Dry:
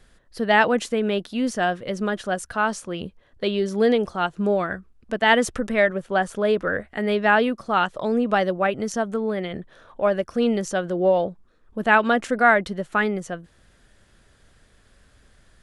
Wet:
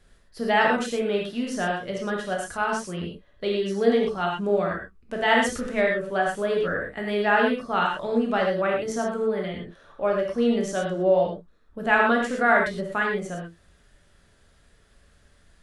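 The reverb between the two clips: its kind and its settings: gated-style reverb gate 140 ms flat, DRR -1.5 dB; trim -6 dB

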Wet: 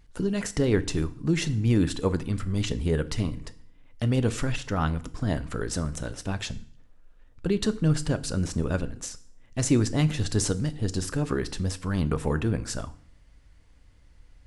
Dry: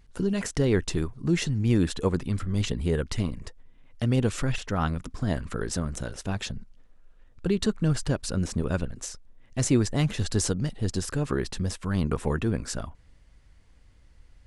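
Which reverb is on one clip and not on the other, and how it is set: FDN reverb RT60 0.55 s, low-frequency decay 1.3×, high-frequency decay 0.95×, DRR 12 dB

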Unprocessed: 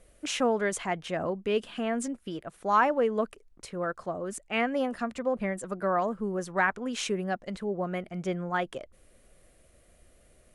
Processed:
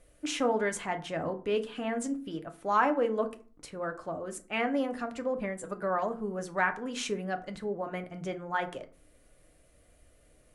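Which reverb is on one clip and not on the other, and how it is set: FDN reverb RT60 0.41 s, low-frequency decay 1.35×, high-frequency decay 0.55×, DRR 6 dB; trim -3 dB

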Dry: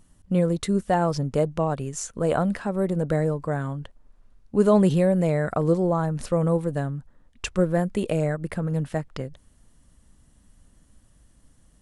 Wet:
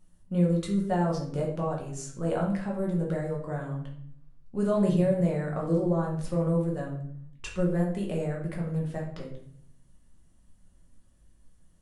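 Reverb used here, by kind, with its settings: simulated room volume 100 m³, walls mixed, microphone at 1 m; trim -11 dB

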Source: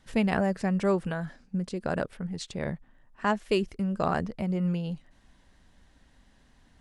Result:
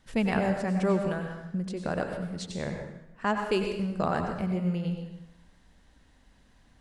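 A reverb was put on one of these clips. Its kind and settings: plate-style reverb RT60 0.85 s, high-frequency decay 0.9×, pre-delay 80 ms, DRR 3.5 dB; trim -1.5 dB

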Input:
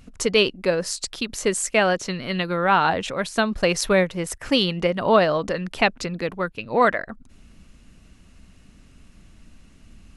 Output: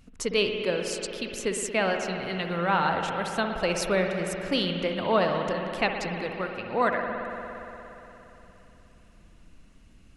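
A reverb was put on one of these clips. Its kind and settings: spring tank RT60 3.5 s, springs 58 ms, chirp 65 ms, DRR 3 dB; trim -7 dB

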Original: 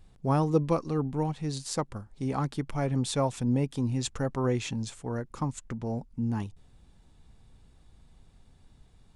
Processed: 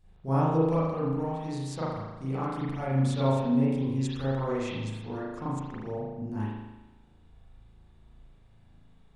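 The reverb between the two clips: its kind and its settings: spring tank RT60 1.1 s, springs 37 ms, chirp 55 ms, DRR -10 dB; trim -10 dB

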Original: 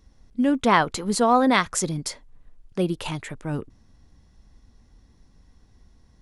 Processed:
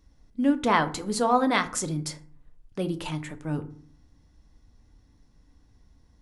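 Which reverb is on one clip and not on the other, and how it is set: FDN reverb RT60 0.48 s, low-frequency decay 1.55×, high-frequency decay 0.55×, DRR 8 dB; trim -4.5 dB

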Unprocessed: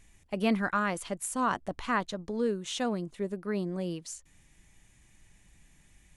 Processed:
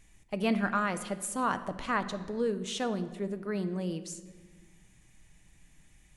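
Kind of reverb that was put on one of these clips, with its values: simulated room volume 1300 m³, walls mixed, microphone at 0.54 m; trim -1 dB

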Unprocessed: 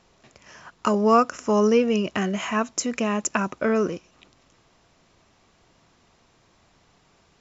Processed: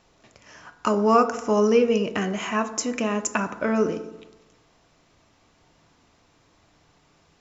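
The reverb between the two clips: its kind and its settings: FDN reverb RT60 1 s, low-frequency decay 1×, high-frequency decay 0.4×, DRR 8 dB; trim -1 dB

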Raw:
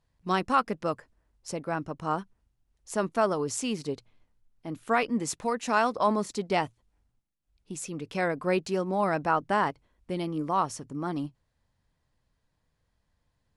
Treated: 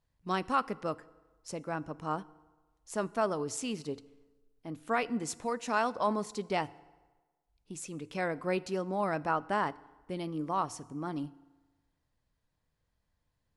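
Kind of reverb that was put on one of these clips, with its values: FDN reverb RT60 1.3 s, low-frequency decay 0.85×, high-frequency decay 0.7×, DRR 18.5 dB; trim -5 dB

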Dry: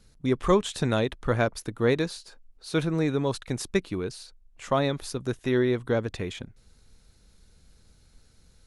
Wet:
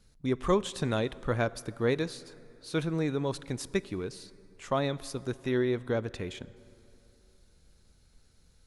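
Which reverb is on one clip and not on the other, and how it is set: plate-style reverb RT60 3.2 s, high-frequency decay 0.6×, DRR 18.5 dB; trim -4.5 dB

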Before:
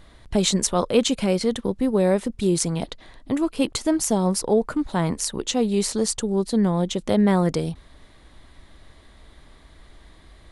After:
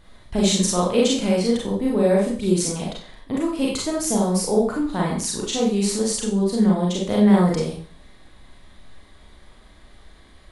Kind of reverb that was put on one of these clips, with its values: Schroeder reverb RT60 0.43 s, combs from 30 ms, DRR -3.5 dB; trim -4 dB

